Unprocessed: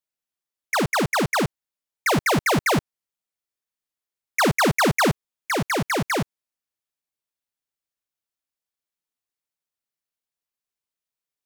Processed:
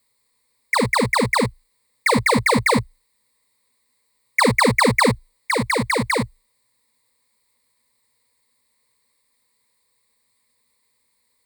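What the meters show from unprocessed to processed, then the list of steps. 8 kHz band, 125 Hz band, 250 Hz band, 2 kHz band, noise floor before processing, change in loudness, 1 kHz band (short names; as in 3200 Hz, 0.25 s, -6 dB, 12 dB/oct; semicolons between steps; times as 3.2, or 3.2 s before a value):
+1.5 dB, +1.5 dB, +3.0 dB, +4.0 dB, under -85 dBFS, +3.0 dB, +3.5 dB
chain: requantised 12-bit, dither triangular; ripple EQ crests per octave 0.96, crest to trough 16 dB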